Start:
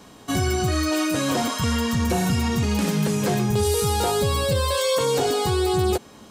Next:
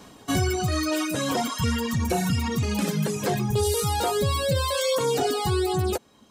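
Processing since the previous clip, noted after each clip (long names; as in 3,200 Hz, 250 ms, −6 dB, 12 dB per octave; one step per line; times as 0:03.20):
reverb reduction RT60 1.7 s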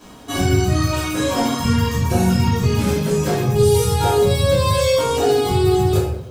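in parallel at −10 dB: soft clipping −26 dBFS, distortion −11 dB
on the sum: surface crackle 150 per second −38 dBFS
rectangular room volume 210 cubic metres, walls mixed, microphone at 2.9 metres
level −5.5 dB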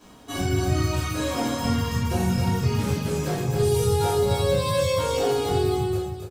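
fade-out on the ending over 0.72 s
on a send: single-tap delay 268 ms −5 dB
on the sum: level −7.5 dB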